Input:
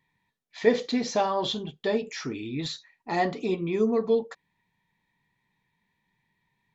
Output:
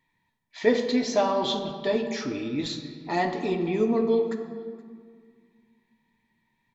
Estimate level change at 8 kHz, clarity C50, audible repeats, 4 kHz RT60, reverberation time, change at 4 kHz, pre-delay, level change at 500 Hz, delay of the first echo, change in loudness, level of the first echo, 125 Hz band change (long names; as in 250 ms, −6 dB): can't be measured, 7.0 dB, 1, 1.3 s, 1.9 s, +1.0 dB, 3 ms, +1.5 dB, 473 ms, +1.0 dB, −22.5 dB, +0.5 dB